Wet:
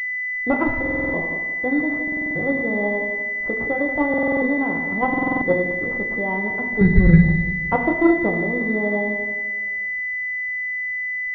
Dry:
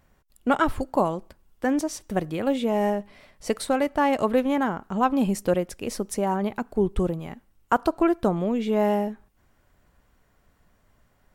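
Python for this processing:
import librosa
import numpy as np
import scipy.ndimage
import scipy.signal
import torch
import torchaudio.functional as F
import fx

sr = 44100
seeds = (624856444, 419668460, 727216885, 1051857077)

p1 = fx.low_shelf_res(x, sr, hz=250.0, db=13.0, q=1.5, at=(6.81, 7.27))
p2 = p1 + fx.echo_feedback(p1, sr, ms=173, feedback_pct=49, wet_db=-11, dry=0)
p3 = fx.dmg_crackle(p2, sr, seeds[0], per_s=260.0, level_db=-47.0)
p4 = fx.level_steps(p3, sr, step_db=19)
p5 = p3 + F.gain(torch.from_numpy(p4), -0.5).numpy()
p6 = fx.rev_fdn(p5, sr, rt60_s=0.98, lf_ratio=1.2, hf_ratio=0.5, size_ms=59.0, drr_db=2.5)
p7 = fx.buffer_glitch(p6, sr, at_s=(0.81, 2.03, 4.09, 5.09, 10.56), block=2048, repeats=6)
p8 = fx.pwm(p7, sr, carrier_hz=2000.0)
y = F.gain(torch.from_numpy(p8), -2.5).numpy()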